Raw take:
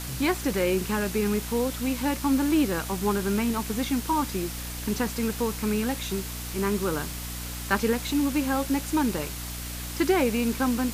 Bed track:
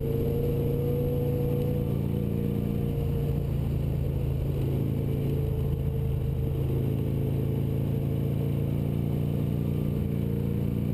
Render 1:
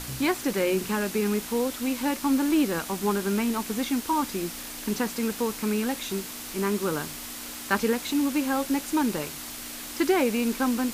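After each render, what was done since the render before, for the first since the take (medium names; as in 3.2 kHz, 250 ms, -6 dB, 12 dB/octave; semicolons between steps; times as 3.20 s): hum notches 60/120/180 Hz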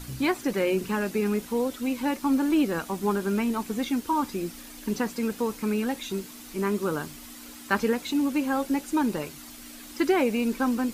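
noise reduction 9 dB, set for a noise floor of -38 dBFS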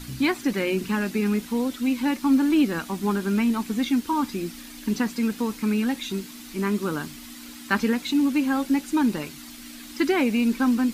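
graphic EQ 250/500/2000/4000 Hz +6/-5/+3/+4 dB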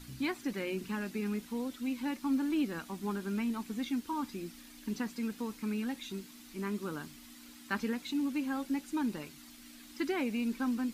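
trim -11.5 dB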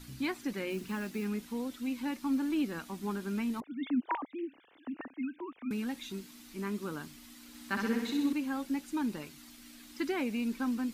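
0.70–1.26 s: block-companded coder 5-bit; 3.60–5.71 s: formants replaced by sine waves; 7.48–8.33 s: flutter echo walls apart 10.8 m, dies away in 0.92 s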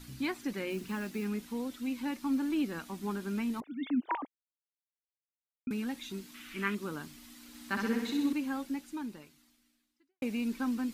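4.27–5.67 s: mute; 6.34–6.75 s: high-order bell 2 kHz +12 dB; 8.51–10.22 s: fade out quadratic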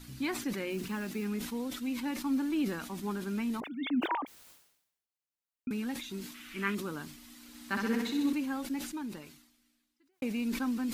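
decay stretcher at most 71 dB/s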